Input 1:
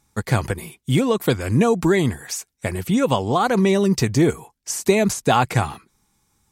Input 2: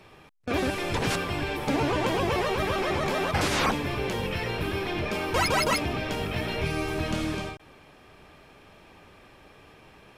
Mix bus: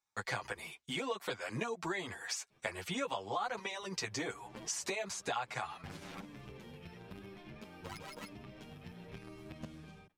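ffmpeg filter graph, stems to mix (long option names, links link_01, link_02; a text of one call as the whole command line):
ffmpeg -i stem1.wav -i stem2.wav -filter_complex "[0:a]acrossover=split=550 7100:gain=0.126 1 0.141[link_01][link_02][link_03];[link_01][link_02][link_03]amix=inputs=3:normalize=0,acompressor=threshold=-32dB:ratio=5,volume=0dB,asplit=2[link_04][link_05];[1:a]equalizer=frequency=180:width=1.5:gain=10.5,acompressor=threshold=-33dB:ratio=2,aeval=exprs='0.1*(cos(1*acos(clip(val(0)/0.1,-1,1)))-cos(1*PI/2))+0.0355*(cos(3*acos(clip(val(0)/0.1,-1,1)))-cos(3*PI/2))+0.01*(cos(5*acos(clip(val(0)/0.1,-1,1)))-cos(5*PI/2))':channel_layout=same,adelay=2500,volume=-8.5dB[link_06];[link_05]apad=whole_len=559156[link_07];[link_06][link_07]sidechaincompress=threshold=-54dB:ratio=12:attack=9.6:release=110[link_08];[link_04][link_08]amix=inputs=2:normalize=0,agate=range=-16dB:threshold=-59dB:ratio=16:detection=peak,asplit=2[link_09][link_10];[link_10]adelay=8.4,afreqshift=1[link_11];[link_09][link_11]amix=inputs=2:normalize=1" out.wav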